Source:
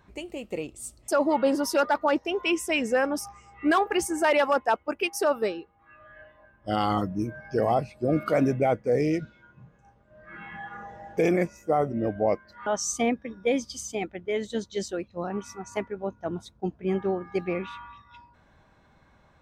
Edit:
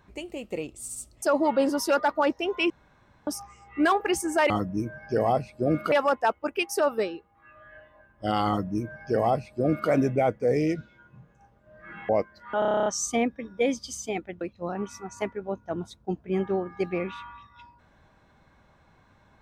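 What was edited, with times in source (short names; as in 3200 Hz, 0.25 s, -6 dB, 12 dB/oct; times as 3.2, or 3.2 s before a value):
0.82 stutter 0.07 s, 3 plays
2.56–3.13 room tone
6.92–8.34 copy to 4.36
10.53–12.22 cut
12.72 stutter 0.03 s, 10 plays
14.27–14.96 cut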